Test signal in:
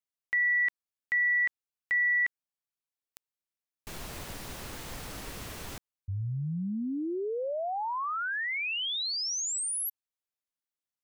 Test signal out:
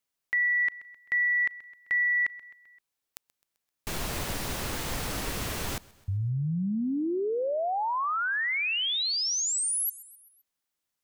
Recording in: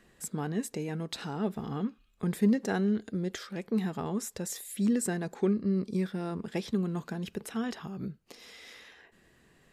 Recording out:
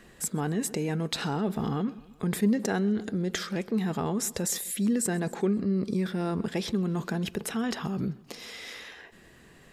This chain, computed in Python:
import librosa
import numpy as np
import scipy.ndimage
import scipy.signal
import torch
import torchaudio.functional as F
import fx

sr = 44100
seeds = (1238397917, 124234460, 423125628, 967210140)

p1 = fx.echo_feedback(x, sr, ms=130, feedback_pct=55, wet_db=-23.5)
p2 = fx.over_compress(p1, sr, threshold_db=-37.0, ratio=-1.0)
y = p1 + (p2 * 10.0 ** (-1.0 / 20.0))